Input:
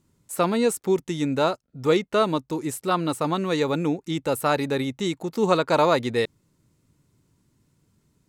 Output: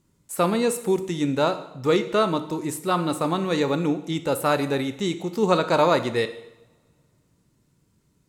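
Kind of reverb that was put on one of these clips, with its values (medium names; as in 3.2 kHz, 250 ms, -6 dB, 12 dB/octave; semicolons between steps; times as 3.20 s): two-slope reverb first 0.8 s, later 2.6 s, from -27 dB, DRR 9 dB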